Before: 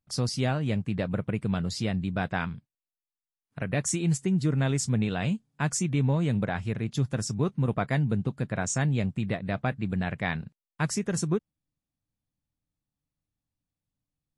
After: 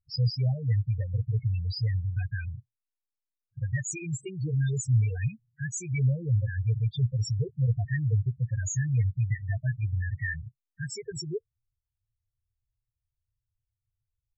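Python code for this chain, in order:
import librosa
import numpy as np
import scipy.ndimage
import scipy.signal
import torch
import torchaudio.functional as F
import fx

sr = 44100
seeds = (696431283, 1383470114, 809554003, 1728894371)

y = fx.curve_eq(x, sr, hz=(120.0, 190.0, 450.0, 1200.0, 1800.0), db=(0, -25, -8, -18, 1))
y = fx.spec_topn(y, sr, count=4)
y = y * 10.0 ** (7.0 / 20.0)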